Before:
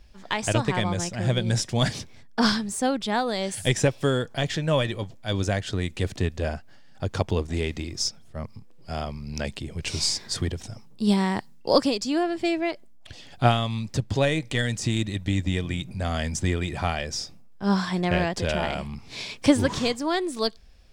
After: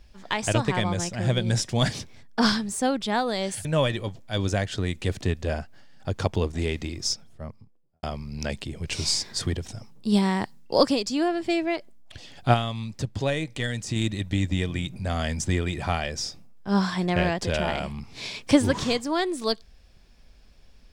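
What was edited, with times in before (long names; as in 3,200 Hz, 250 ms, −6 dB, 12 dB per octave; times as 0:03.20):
0:03.65–0:04.60: remove
0:08.05–0:08.98: fade out and dull
0:13.49–0:14.91: clip gain −3.5 dB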